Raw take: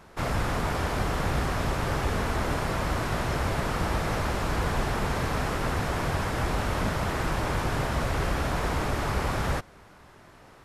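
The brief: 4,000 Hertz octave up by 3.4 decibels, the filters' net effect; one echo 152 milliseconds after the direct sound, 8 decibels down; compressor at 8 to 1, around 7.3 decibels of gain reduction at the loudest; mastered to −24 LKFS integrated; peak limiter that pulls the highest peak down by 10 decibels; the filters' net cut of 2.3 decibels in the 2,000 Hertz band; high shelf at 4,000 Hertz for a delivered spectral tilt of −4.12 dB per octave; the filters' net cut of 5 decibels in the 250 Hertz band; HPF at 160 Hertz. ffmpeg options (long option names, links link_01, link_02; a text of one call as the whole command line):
ffmpeg -i in.wav -af "highpass=160,equalizer=frequency=250:width_type=o:gain=-5.5,equalizer=frequency=2000:width_type=o:gain=-4.5,highshelf=frequency=4000:gain=4.5,equalizer=frequency=4000:width_type=o:gain=3,acompressor=threshold=-35dB:ratio=8,alimiter=level_in=11dB:limit=-24dB:level=0:latency=1,volume=-11dB,aecho=1:1:152:0.398,volume=19dB" out.wav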